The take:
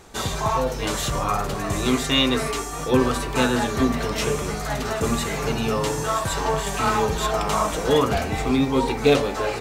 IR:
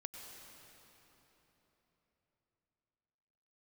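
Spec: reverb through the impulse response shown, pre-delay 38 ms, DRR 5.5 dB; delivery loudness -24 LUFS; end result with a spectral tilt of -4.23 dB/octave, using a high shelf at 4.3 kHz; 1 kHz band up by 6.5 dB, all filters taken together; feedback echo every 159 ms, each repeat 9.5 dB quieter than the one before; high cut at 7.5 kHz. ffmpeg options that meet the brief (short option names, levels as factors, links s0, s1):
-filter_complex "[0:a]lowpass=7500,equalizer=f=1000:t=o:g=8.5,highshelf=f=4300:g=-8.5,aecho=1:1:159|318|477|636:0.335|0.111|0.0365|0.012,asplit=2[s0][s1];[1:a]atrim=start_sample=2205,adelay=38[s2];[s1][s2]afir=irnorm=-1:irlink=0,volume=0.75[s3];[s0][s3]amix=inputs=2:normalize=0,volume=0.531"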